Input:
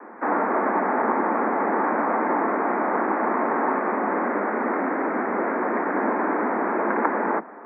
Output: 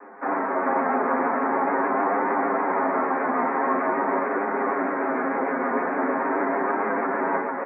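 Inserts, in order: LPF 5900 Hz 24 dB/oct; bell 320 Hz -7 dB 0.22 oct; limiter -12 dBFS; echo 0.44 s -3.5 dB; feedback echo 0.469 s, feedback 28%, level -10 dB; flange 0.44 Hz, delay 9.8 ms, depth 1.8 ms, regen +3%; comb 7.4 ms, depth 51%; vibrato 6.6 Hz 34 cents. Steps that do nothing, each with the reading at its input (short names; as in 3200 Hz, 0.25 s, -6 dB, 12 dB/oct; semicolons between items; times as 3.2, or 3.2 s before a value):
LPF 5900 Hz: input band ends at 2400 Hz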